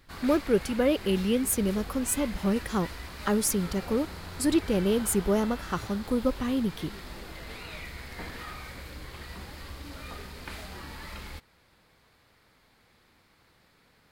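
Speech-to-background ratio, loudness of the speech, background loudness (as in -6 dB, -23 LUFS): 13.0 dB, -28.0 LUFS, -41.0 LUFS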